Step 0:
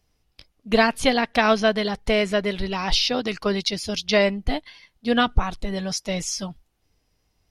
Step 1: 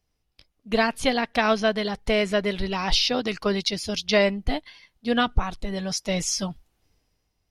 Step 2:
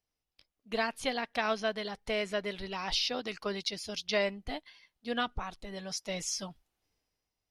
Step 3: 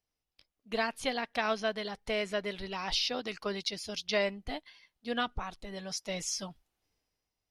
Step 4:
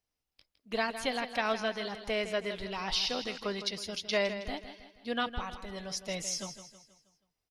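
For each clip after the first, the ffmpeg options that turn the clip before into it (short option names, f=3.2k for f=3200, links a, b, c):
-af "dynaudnorm=f=120:g=11:m=10dB,volume=-7dB"
-af "lowshelf=f=240:g=-9,volume=-8.5dB"
-af anull
-af "aecho=1:1:160|320|480|640|800:0.282|0.127|0.0571|0.0257|0.0116"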